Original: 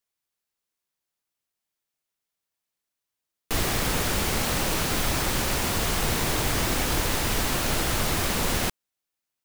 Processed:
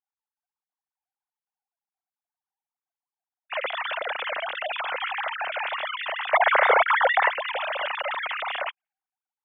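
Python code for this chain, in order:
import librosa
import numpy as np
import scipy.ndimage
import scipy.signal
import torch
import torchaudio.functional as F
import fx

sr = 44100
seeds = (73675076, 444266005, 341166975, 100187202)

y = fx.sine_speech(x, sr)
y = fx.env_lowpass(y, sr, base_hz=850.0, full_db=-21.0)
y = fx.spec_box(y, sr, start_s=6.33, length_s=0.96, low_hz=370.0, high_hz=2300.0, gain_db=11)
y = F.gain(torch.from_numpy(y), -5.0).numpy()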